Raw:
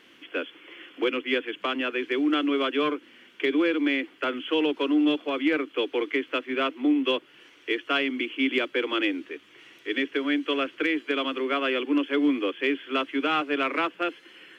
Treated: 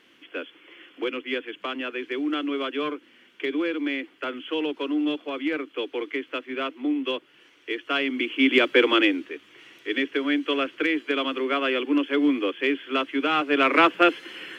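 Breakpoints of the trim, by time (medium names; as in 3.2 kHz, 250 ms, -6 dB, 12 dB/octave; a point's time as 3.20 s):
7.69 s -3 dB
8.82 s +9 dB
9.29 s +1.5 dB
13.33 s +1.5 dB
13.89 s +10 dB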